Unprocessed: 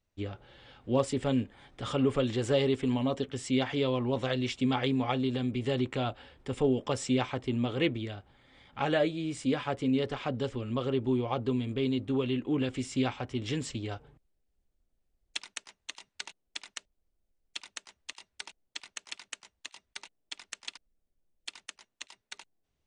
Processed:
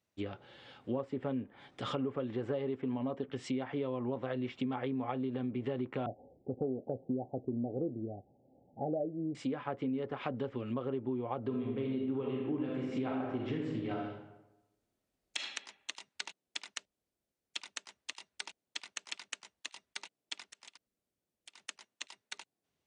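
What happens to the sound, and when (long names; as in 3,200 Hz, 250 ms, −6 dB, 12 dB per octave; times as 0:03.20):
0:06.06–0:09.35: Butterworth low-pass 790 Hz 96 dB per octave
0:11.39–0:15.37: thrown reverb, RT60 0.94 s, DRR −1 dB
0:20.45–0:21.60: downward compressor 16 to 1, threshold −49 dBFS
whole clip: treble cut that deepens with the level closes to 1,600 Hz, closed at −28.5 dBFS; high-pass filter 140 Hz 12 dB per octave; downward compressor, threshold −32 dBFS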